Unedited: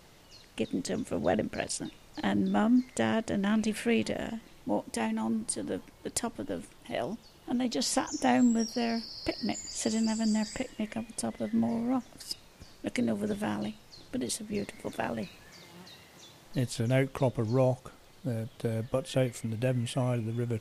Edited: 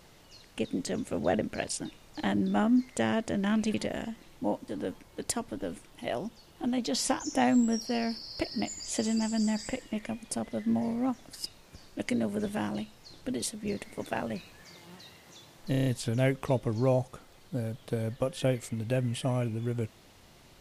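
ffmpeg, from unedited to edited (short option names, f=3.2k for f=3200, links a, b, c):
-filter_complex "[0:a]asplit=8[a][b][c][d][e][f][g][h];[a]atrim=end=3.742[i];[b]atrim=start=3.988:end=4.932[j];[c]atrim=start=5.548:end=16.612[k];[d]atrim=start=16.578:end=16.612[l];[e]atrim=start=16.578:end=16.612[m];[f]atrim=start=16.578:end=16.612[n];[g]atrim=start=16.578:end=16.612[o];[h]atrim=start=16.578[p];[i][j]acrossfade=d=0.004:c1=hsin:c2=hsin[q];[q][k]acrossfade=d=0.004:c1=hsin:c2=hsin[r];[r][l]acrossfade=d=0.004:c1=hsin:c2=hsin[s];[s][m]acrossfade=d=0.004:c1=hsin:c2=hsin[t];[t][n]acrossfade=d=0.004:c1=hsin:c2=hsin[u];[u][o]acrossfade=d=0.004:c1=hsin:c2=hsin[v];[v][p]acrossfade=d=0.004:c1=hsin:c2=hsin"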